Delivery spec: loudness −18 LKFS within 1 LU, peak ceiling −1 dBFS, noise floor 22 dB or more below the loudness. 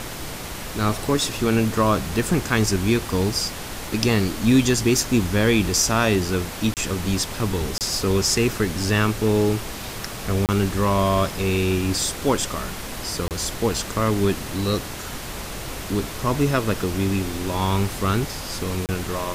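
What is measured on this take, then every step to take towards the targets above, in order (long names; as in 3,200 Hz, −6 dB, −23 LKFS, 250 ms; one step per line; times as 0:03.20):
number of dropouts 5; longest dropout 28 ms; background noise floor −33 dBFS; target noise floor −45 dBFS; integrated loudness −22.5 LKFS; sample peak −3.0 dBFS; target loudness −18.0 LKFS
→ repair the gap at 0:06.74/0:07.78/0:10.46/0:13.28/0:18.86, 28 ms
noise reduction from a noise print 12 dB
level +4.5 dB
brickwall limiter −1 dBFS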